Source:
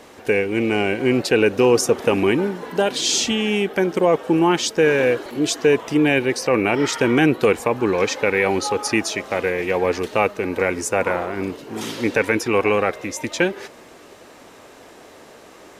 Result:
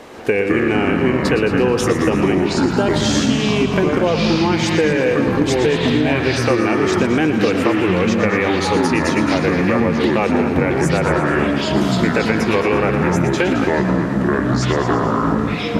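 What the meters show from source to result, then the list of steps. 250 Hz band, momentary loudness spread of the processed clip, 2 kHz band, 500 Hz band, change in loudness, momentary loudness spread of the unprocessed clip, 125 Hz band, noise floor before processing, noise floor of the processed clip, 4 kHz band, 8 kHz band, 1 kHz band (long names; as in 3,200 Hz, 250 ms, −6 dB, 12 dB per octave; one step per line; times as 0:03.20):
+6.0 dB, 1 LU, +2.5 dB, +2.0 dB, +3.0 dB, 7 LU, +10.0 dB, −45 dBFS, −21 dBFS, +1.5 dB, −3.0 dB, +4.5 dB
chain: delay with pitch and tempo change per echo 116 ms, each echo −5 semitones, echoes 3
echo machine with several playback heads 108 ms, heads first and second, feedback 48%, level −14 dB
downward compressor, threshold −19 dBFS, peak gain reduction 10 dB
high-shelf EQ 4,700 Hz −8 dB
on a send: feedback echo with a high-pass in the loop 118 ms, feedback 64%, level −11 dB
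on the sum: level +6.5 dB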